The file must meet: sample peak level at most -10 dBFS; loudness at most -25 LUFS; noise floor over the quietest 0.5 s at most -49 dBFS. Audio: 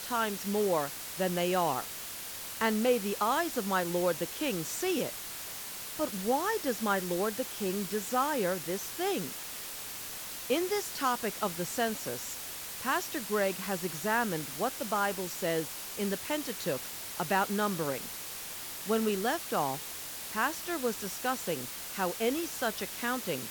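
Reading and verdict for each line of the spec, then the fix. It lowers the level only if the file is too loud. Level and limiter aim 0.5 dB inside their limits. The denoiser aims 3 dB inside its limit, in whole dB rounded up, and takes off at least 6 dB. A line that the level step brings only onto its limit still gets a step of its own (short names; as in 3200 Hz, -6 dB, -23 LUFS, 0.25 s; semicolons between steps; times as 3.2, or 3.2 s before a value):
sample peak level -15.5 dBFS: OK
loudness -32.0 LUFS: OK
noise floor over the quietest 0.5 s -41 dBFS: fail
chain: denoiser 11 dB, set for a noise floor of -41 dBFS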